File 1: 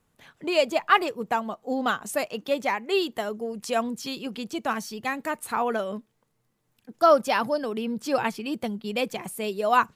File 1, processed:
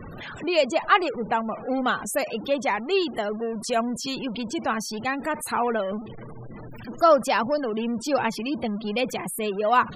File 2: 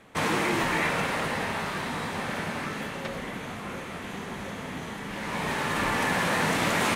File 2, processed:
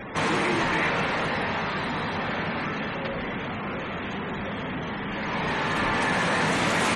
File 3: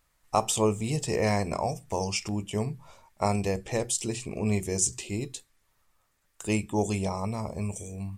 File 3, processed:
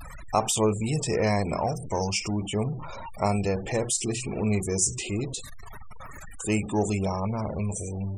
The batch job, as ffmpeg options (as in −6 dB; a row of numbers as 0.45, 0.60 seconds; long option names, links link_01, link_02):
-af "aeval=exprs='val(0)+0.5*0.0282*sgn(val(0))':channel_layout=same,afftfilt=real='re*gte(hypot(re,im),0.0178)':imag='im*gte(hypot(re,im),0.0178)':win_size=1024:overlap=0.75"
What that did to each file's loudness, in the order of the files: +1.5, +2.0, +2.0 LU